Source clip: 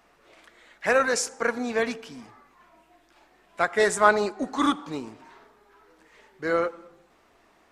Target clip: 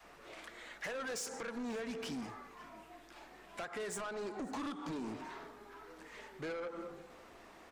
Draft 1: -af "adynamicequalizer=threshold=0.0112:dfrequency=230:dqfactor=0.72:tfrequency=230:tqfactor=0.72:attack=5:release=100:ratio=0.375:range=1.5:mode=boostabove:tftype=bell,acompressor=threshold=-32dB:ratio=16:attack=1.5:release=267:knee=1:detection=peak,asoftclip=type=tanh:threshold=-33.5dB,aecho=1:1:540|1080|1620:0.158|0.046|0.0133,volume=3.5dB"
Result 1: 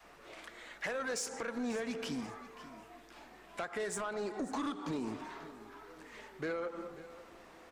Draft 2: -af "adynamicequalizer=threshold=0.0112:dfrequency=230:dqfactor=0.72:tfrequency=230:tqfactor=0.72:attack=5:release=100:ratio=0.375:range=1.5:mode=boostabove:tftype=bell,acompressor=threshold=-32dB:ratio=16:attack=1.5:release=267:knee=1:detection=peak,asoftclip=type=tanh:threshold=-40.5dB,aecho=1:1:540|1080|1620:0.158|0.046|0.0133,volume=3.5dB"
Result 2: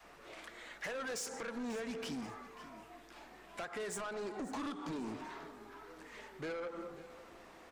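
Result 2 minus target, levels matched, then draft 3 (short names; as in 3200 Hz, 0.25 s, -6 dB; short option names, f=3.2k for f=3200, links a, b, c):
echo-to-direct +6.5 dB
-af "adynamicequalizer=threshold=0.0112:dfrequency=230:dqfactor=0.72:tfrequency=230:tqfactor=0.72:attack=5:release=100:ratio=0.375:range=1.5:mode=boostabove:tftype=bell,acompressor=threshold=-32dB:ratio=16:attack=1.5:release=267:knee=1:detection=peak,asoftclip=type=tanh:threshold=-40.5dB,aecho=1:1:540|1080:0.075|0.0217,volume=3.5dB"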